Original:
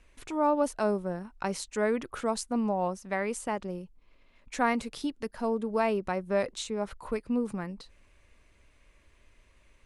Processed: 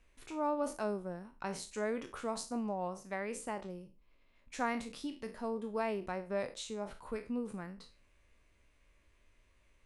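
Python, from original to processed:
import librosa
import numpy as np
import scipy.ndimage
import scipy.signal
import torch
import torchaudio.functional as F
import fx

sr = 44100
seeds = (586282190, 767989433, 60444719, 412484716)

y = fx.spec_trails(x, sr, decay_s=0.33)
y = y * librosa.db_to_amplitude(-8.5)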